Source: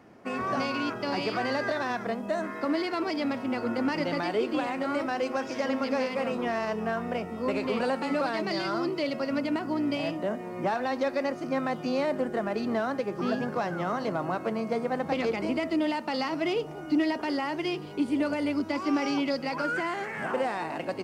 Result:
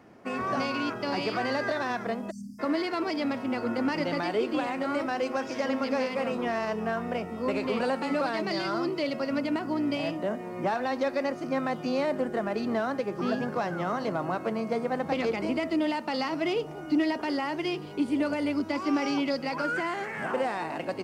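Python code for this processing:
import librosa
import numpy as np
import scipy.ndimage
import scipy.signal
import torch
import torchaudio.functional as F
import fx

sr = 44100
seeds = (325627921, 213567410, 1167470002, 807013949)

y = fx.spec_erase(x, sr, start_s=2.31, length_s=0.29, low_hz=270.0, high_hz=4500.0)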